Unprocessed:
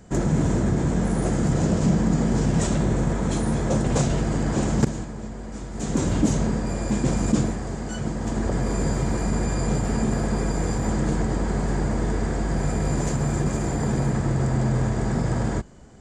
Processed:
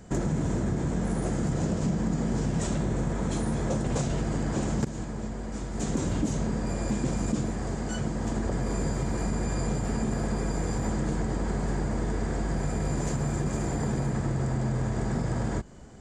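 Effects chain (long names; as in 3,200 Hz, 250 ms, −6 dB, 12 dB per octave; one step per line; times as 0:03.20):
downward compressor 3 to 1, threshold −26 dBFS, peak gain reduction 10 dB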